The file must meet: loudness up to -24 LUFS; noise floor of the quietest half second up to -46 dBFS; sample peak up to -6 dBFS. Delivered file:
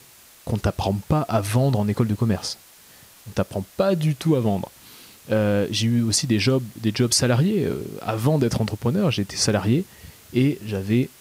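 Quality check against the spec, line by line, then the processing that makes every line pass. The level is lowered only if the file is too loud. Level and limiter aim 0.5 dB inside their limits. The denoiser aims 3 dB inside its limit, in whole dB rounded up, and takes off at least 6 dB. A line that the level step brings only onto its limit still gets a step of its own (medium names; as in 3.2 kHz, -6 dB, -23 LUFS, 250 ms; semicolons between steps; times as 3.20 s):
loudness -22.5 LUFS: fail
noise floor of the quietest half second -49 dBFS: pass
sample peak -7.0 dBFS: pass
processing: trim -2 dB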